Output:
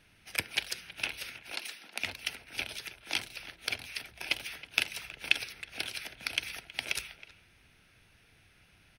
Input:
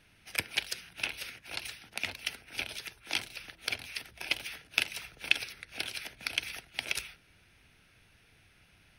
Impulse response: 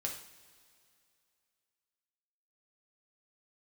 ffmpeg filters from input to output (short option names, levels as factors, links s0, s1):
-filter_complex "[0:a]asettb=1/sr,asplit=3[s0][s1][s2];[s0]atrim=end=1.514[s3];[s1]atrim=start=1.51:end=2,asetpts=PTS-STARTPTS,afade=t=in:d=0.004:c=qsin,afade=t=out:st=0.486:d=0.004:c=qsin,highpass=f=200:w=0.5412,highpass=f=200:w=1.3066[s4];[s2]atrim=start=1.996[s5];[s3][s4]acrossfade=d=0.004:c1=hsin:c2=qsin[s6];[s6][s5]acrossfade=d=0.004:c1=qsin:c2=hsin,asplit=2[s7][s8];[s8]adelay=320,highpass=300,lowpass=3400,asoftclip=type=hard:threshold=0.188,volume=0.158[s9];[s7][s9]amix=inputs=2:normalize=0"